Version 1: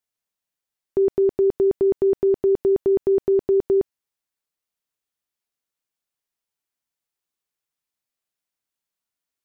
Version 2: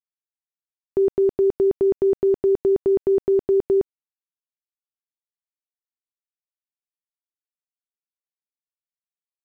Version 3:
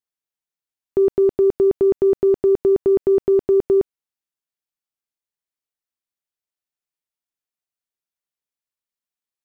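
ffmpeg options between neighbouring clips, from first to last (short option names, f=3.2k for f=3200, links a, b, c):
-af "acrusher=bits=9:mix=0:aa=0.000001"
-af "acontrast=27,volume=-2dB"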